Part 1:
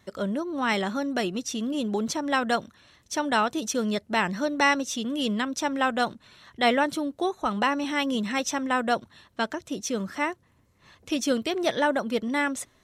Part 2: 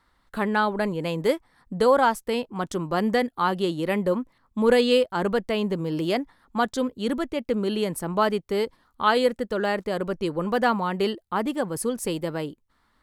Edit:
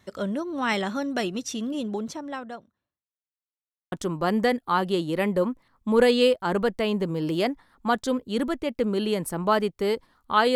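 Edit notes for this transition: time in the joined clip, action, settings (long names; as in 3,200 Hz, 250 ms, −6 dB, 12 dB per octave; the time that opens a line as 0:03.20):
part 1
0:01.36–0:03.11: fade out and dull
0:03.11–0:03.92: silence
0:03.92: continue with part 2 from 0:02.62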